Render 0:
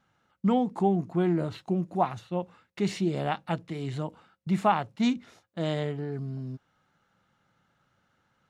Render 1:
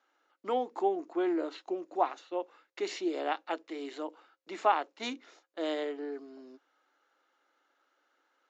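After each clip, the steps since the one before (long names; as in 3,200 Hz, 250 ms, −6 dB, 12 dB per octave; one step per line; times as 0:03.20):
Chebyshev band-pass filter 290–7,100 Hz, order 5
level −1.5 dB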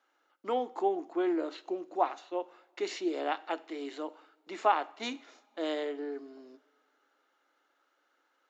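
coupled-rooms reverb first 0.6 s, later 3 s, from −21 dB, DRR 15.5 dB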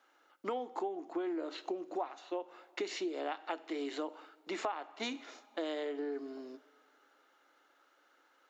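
downward compressor 10 to 1, threshold −39 dBFS, peak gain reduction 19 dB
level +5 dB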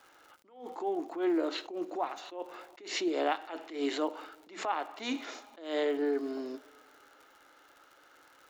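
hum removal 93.84 Hz, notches 2
surface crackle 110 per second −55 dBFS
level that may rise only so fast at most 120 dB per second
level +8.5 dB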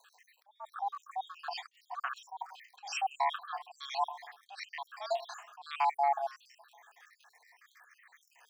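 time-frequency cells dropped at random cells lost 68%
frequency shifter +410 Hz
level +2.5 dB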